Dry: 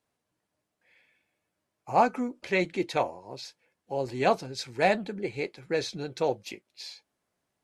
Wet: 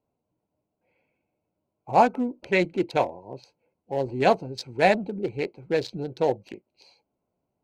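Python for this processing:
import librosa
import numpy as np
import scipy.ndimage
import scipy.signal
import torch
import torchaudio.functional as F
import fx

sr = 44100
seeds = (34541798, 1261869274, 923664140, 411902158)

y = fx.wiener(x, sr, points=25)
y = fx.notch(y, sr, hz=1200.0, q=7.3)
y = F.gain(torch.from_numpy(y), 4.5).numpy()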